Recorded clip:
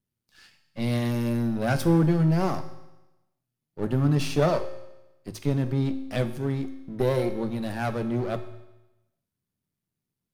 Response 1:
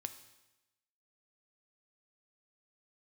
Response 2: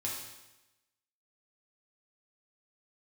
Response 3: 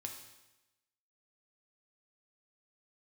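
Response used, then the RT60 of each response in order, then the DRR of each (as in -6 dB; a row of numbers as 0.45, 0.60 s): 1; 1.0, 1.0, 1.0 s; 9.0, -4.0, 2.5 dB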